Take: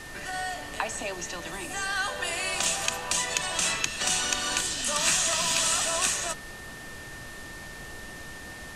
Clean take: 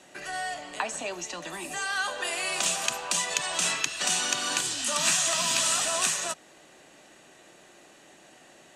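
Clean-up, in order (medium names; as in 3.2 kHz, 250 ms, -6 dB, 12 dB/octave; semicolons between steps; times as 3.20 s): band-stop 1.8 kHz, Q 30; noise print and reduce 13 dB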